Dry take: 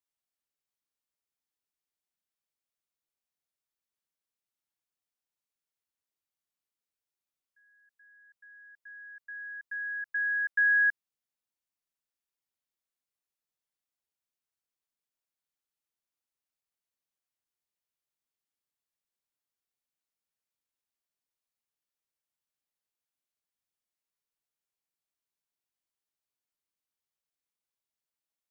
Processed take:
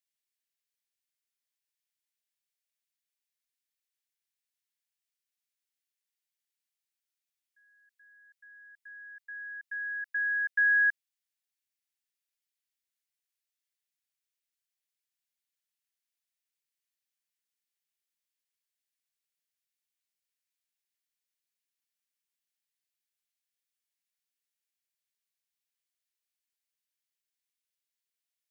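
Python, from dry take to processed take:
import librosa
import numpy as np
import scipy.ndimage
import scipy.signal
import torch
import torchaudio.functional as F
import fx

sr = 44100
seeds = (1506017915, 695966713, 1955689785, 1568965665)

y = scipy.signal.sosfilt(scipy.signal.butter(6, 1600.0, 'highpass', fs=sr, output='sos'), x)
y = y * 10.0 ** (2.0 / 20.0)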